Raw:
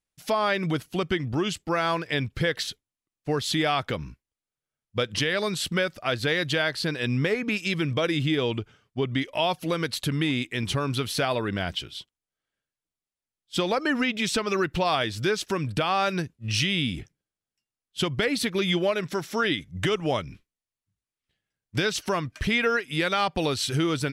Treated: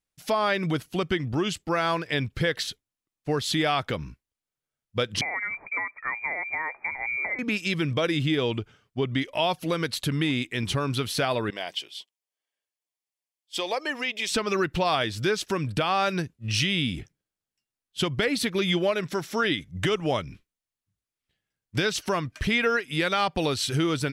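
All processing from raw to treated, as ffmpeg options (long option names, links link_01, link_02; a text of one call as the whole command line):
ffmpeg -i in.wav -filter_complex "[0:a]asettb=1/sr,asplit=3[link_01][link_02][link_03];[link_01]atrim=end=5.214[link_04];[link_02]atrim=start=5.21:end=7.39,asetpts=PTS-STARTPTS,afade=type=in:duration=0.004:curve=qsin,afade=type=out:start_time=2.176:duration=0.004:curve=qsin,lowpass=frequency=2100:width_type=q:width=0.5098,lowpass=frequency=2100:width_type=q:width=0.6013,lowpass=frequency=2100:width_type=q:width=0.9,lowpass=frequency=2100:width_type=q:width=2.563,afreqshift=-2500,acrossover=split=390|1000[link_05][link_06][link_07];[link_05]acompressor=threshold=-52dB:ratio=4[link_08];[link_06]acompressor=threshold=-40dB:ratio=4[link_09];[link_07]acompressor=threshold=-28dB:ratio=4[link_10];[link_08][link_09][link_10]amix=inputs=3:normalize=0[link_11];[link_03]atrim=start=7.386[link_12];[link_04][link_11]acrossfade=duration=0.004:curve1=hsin:curve2=qsin[link_13];[link_13][link_12]acrossfade=duration=0.004:curve1=qsin:curve2=hsin,asettb=1/sr,asplit=3[link_14][link_15][link_16];[link_14]atrim=end=11.504[link_17];[link_15]atrim=start=11.5:end=14.29,asetpts=PTS-STARTPTS,afade=type=in:duration=0.004:curve=qsin,afade=type=out:start_time=2.786:duration=0.004:curve=qsin,highpass=530,equalizer=frequency=1400:width_type=o:width=0.33:gain=-12.5,bandreject=frequency=3900:width=17[link_18];[link_16]atrim=start=14.286[link_19];[link_17][link_18]acrossfade=duration=0.004:curve1=hsin:curve2=qsin[link_20];[link_20][link_19]acrossfade=duration=0.004:curve1=qsin:curve2=hsin" out.wav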